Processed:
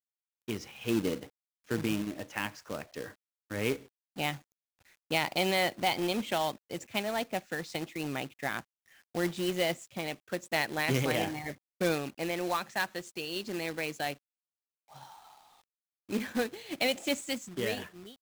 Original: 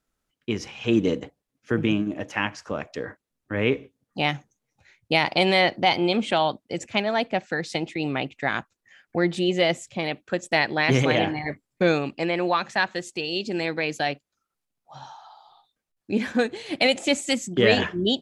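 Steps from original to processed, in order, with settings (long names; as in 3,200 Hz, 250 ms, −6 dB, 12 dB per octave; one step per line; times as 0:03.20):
fade-out on the ending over 1.08 s
log-companded quantiser 4 bits
level −9 dB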